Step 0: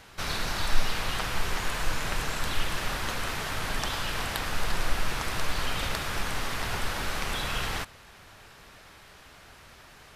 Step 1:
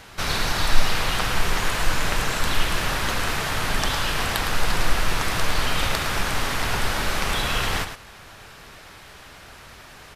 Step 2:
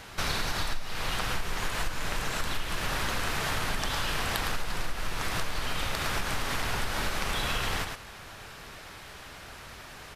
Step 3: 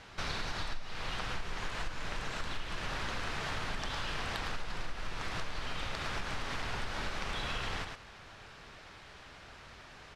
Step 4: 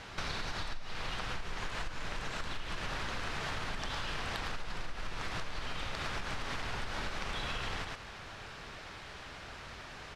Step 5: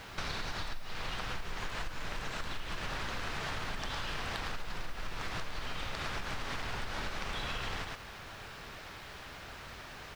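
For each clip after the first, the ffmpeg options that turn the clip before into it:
ffmpeg -i in.wav -af "aecho=1:1:109:0.355,volume=6.5dB" out.wav
ffmpeg -i in.wav -af "acompressor=threshold=-24dB:ratio=16,volume=-1dB" out.wav
ffmpeg -i in.wav -af "lowpass=5800,volume=-6.5dB" out.wav
ffmpeg -i in.wav -af "acompressor=threshold=-40dB:ratio=3,volume=5dB" out.wav
ffmpeg -i in.wav -af "acrusher=bits=9:mix=0:aa=0.000001" out.wav

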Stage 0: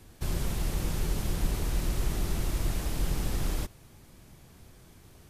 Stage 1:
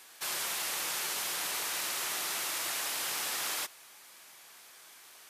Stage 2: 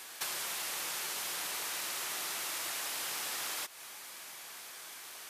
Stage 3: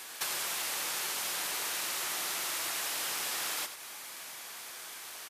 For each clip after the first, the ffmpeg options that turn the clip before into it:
ffmpeg -i in.wav -af "highpass=1100,volume=8dB" out.wav
ffmpeg -i in.wav -af "acompressor=threshold=-41dB:ratio=12,volume=6.5dB" out.wav
ffmpeg -i in.wav -af "aecho=1:1:92:0.335,volume=2.5dB" out.wav

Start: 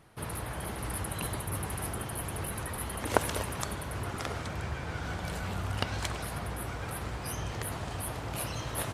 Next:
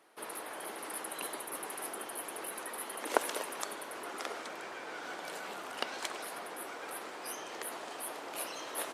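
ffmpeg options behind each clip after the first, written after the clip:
ffmpeg -i in.wav -af "highpass=frequency=310:width=0.5412,highpass=frequency=310:width=1.3066,volume=-2.5dB" out.wav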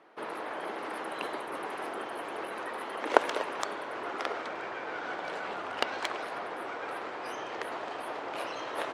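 ffmpeg -i in.wav -af "asubboost=boost=5:cutoff=80,adynamicsmooth=sensitivity=2:basefreq=2900,volume=7.5dB" out.wav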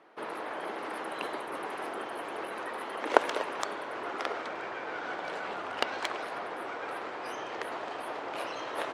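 ffmpeg -i in.wav -af anull out.wav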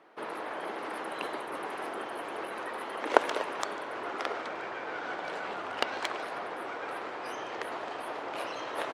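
ffmpeg -i in.wav -af "aecho=1:1:147:0.0794" out.wav

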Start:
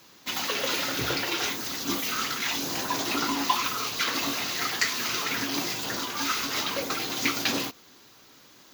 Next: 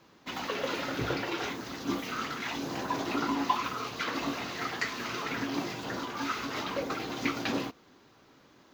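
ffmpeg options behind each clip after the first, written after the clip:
ffmpeg -i in.wav -af "lowpass=frequency=1200:poles=1" out.wav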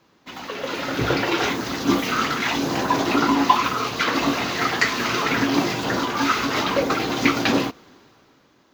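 ffmpeg -i in.wav -af "dynaudnorm=framelen=110:gausssize=17:maxgain=13dB" out.wav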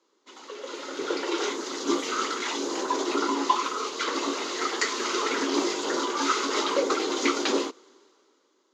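ffmpeg -i in.wav -af "highpass=frequency=320:width=0.5412,highpass=frequency=320:width=1.3066,equalizer=frequency=390:width_type=q:width=4:gain=6,equalizer=frequency=710:width_type=q:width=4:gain=-10,equalizer=frequency=1700:width_type=q:width=4:gain=-7,equalizer=frequency=2500:width_type=q:width=4:gain=-7,equalizer=frequency=7000:width_type=q:width=4:gain=8,lowpass=frequency=9000:width=0.5412,lowpass=frequency=9000:width=1.3066,dynaudnorm=framelen=320:gausssize=9:maxgain=11.5dB,volume=-8.5dB" out.wav

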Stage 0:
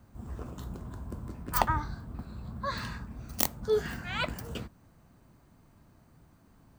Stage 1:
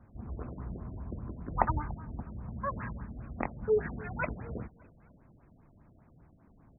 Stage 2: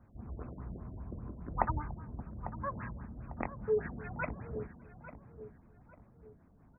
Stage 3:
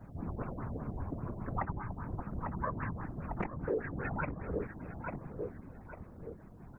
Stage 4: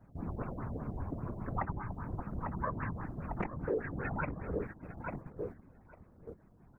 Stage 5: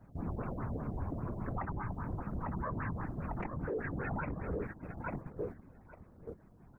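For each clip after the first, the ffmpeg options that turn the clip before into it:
ffmpeg -i in.wav -af "aecho=1:1:290|580|870:0.075|0.0345|0.0159,afftfilt=real='re*lt(b*sr/1024,680*pow(2700/680,0.5+0.5*sin(2*PI*5*pts/sr)))':imag='im*lt(b*sr/1024,680*pow(2700/680,0.5+0.5*sin(2*PI*5*pts/sr)))':win_size=1024:overlap=0.75" out.wav
ffmpeg -i in.wav -filter_complex "[0:a]asplit=2[link_01][link_02];[link_02]adelay=848,lowpass=frequency=1300:poles=1,volume=-11.5dB,asplit=2[link_03][link_04];[link_04]adelay=848,lowpass=frequency=1300:poles=1,volume=0.42,asplit=2[link_05][link_06];[link_06]adelay=848,lowpass=frequency=1300:poles=1,volume=0.42,asplit=2[link_07][link_08];[link_08]adelay=848,lowpass=frequency=1300:poles=1,volume=0.42[link_09];[link_01][link_03][link_05][link_07][link_09]amix=inputs=5:normalize=0,volume=-3.5dB" out.wav
ffmpeg -i in.wav -filter_complex "[0:a]acrossover=split=430|1700[link_01][link_02][link_03];[link_01]acompressor=threshold=-47dB:ratio=4[link_04];[link_02]acompressor=threshold=-50dB:ratio=4[link_05];[link_03]acompressor=threshold=-58dB:ratio=4[link_06];[link_04][link_05][link_06]amix=inputs=3:normalize=0,afftfilt=real='hypot(re,im)*cos(2*PI*random(0))':imag='hypot(re,im)*sin(2*PI*random(1))':win_size=512:overlap=0.75,volume=16dB" out.wav
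ffmpeg -i in.wav -af "agate=range=-9dB:threshold=-43dB:ratio=16:detection=peak" out.wav
ffmpeg -i in.wav -af "alimiter=level_in=7dB:limit=-24dB:level=0:latency=1:release=21,volume=-7dB,volume=2dB" out.wav

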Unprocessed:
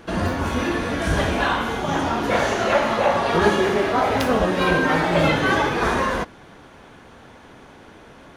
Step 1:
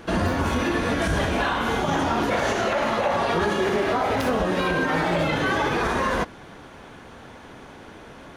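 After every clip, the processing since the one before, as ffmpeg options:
ffmpeg -i in.wav -af "alimiter=limit=-16dB:level=0:latency=1:release=91,volume=2dB" out.wav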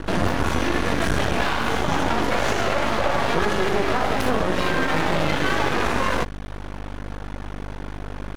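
ffmpeg -i in.wav -filter_complex "[0:a]acrossover=split=1900[link_01][link_02];[link_01]acompressor=mode=upward:threshold=-34dB:ratio=2.5[link_03];[link_03][link_02]amix=inputs=2:normalize=0,aeval=exprs='val(0)+0.0224*(sin(2*PI*50*n/s)+sin(2*PI*2*50*n/s)/2+sin(2*PI*3*50*n/s)/3+sin(2*PI*4*50*n/s)/4+sin(2*PI*5*50*n/s)/5)':channel_layout=same,aeval=exprs='max(val(0),0)':channel_layout=same,volume=5dB" out.wav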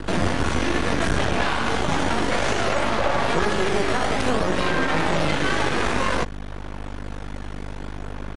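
ffmpeg -i in.wav -filter_complex "[0:a]acrossover=split=330|850[link_01][link_02][link_03];[link_02]acrusher=samples=10:mix=1:aa=0.000001:lfo=1:lforange=16:lforate=0.57[link_04];[link_01][link_04][link_03]amix=inputs=3:normalize=0,aresample=22050,aresample=44100" out.wav

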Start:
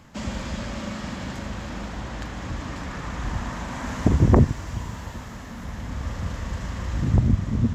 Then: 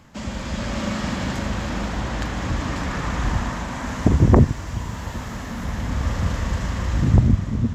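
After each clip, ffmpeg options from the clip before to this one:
ffmpeg -i in.wav -af "dynaudnorm=framelen=110:gausssize=11:maxgain=7dB" out.wav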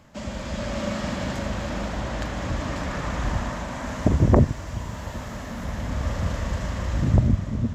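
ffmpeg -i in.wav -af "equalizer=frequency=600:width_type=o:width=0.3:gain=7.5,volume=-3.5dB" out.wav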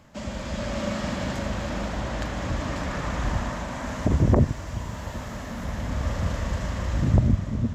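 ffmpeg -i in.wav -af "alimiter=level_in=7.5dB:limit=-1dB:release=50:level=0:latency=1,volume=-8dB" out.wav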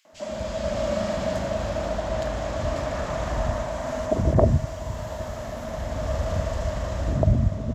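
ffmpeg -i in.wav -filter_complex "[0:a]equalizer=frequency=640:width_type=o:width=0.23:gain=13.5,acrossover=split=230|2100[link_01][link_02][link_03];[link_02]adelay=50[link_04];[link_01]adelay=130[link_05];[link_05][link_04][link_03]amix=inputs=3:normalize=0" out.wav

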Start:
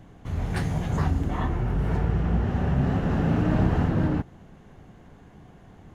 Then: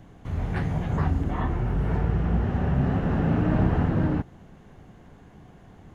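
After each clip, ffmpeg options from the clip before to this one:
ffmpeg -i in.wav -filter_complex "[0:a]acrossover=split=3100[link_01][link_02];[link_02]acompressor=threshold=-60dB:ratio=4:attack=1:release=60[link_03];[link_01][link_03]amix=inputs=2:normalize=0" out.wav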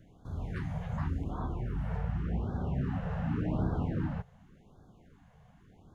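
ffmpeg -i in.wav -af "afftfilt=real='re*(1-between(b*sr/1024,280*pow(2400/280,0.5+0.5*sin(2*PI*0.88*pts/sr))/1.41,280*pow(2400/280,0.5+0.5*sin(2*PI*0.88*pts/sr))*1.41))':imag='im*(1-between(b*sr/1024,280*pow(2400/280,0.5+0.5*sin(2*PI*0.88*pts/sr))/1.41,280*pow(2400/280,0.5+0.5*sin(2*PI*0.88*pts/sr))*1.41))':win_size=1024:overlap=0.75,volume=-9dB" out.wav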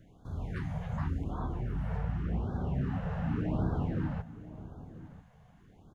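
ffmpeg -i in.wav -filter_complex "[0:a]asplit=2[link_01][link_02];[link_02]adelay=991.3,volume=-15dB,highshelf=frequency=4000:gain=-22.3[link_03];[link_01][link_03]amix=inputs=2:normalize=0" out.wav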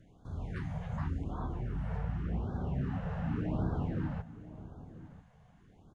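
ffmpeg -i in.wav -af "aresample=22050,aresample=44100,volume=-2dB" out.wav

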